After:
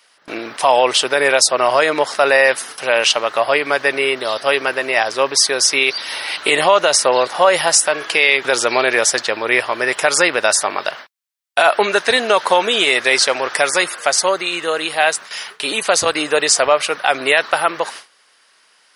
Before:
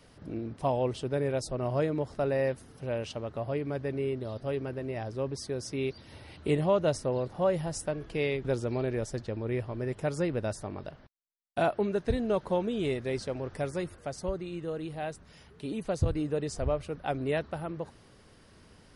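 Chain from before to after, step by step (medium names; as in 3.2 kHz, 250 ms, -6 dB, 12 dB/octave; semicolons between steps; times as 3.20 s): high-pass 1.2 kHz 12 dB/octave; gate with hold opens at -50 dBFS; loudness maximiser +31.5 dB; trim -1 dB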